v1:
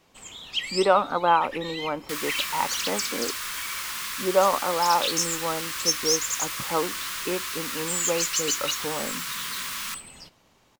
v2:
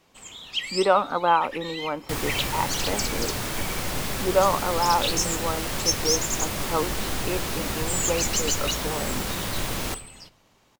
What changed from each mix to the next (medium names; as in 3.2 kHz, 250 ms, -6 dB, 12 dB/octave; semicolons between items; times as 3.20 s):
second sound: remove steep high-pass 1 kHz 96 dB/octave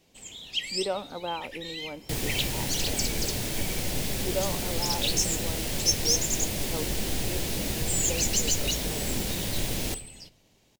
speech -7.0 dB; master: add peaking EQ 1.2 kHz -14 dB 1 oct